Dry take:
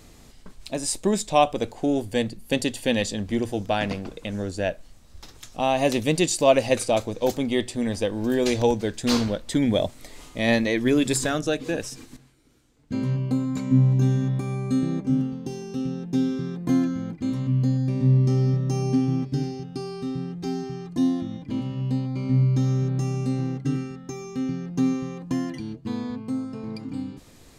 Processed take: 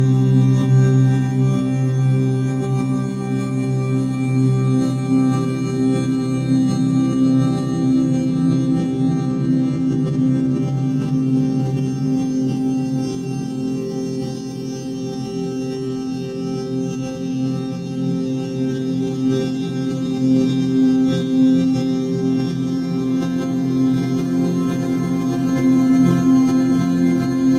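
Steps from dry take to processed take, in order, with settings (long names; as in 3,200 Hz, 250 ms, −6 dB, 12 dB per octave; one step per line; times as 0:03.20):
extreme stretch with random phases 10×, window 1.00 s, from 0:14.12
harmonic generator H 4 −32 dB, 7 −44 dB, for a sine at −11.5 dBFS
level that may fall only so fast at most 27 dB per second
level +6.5 dB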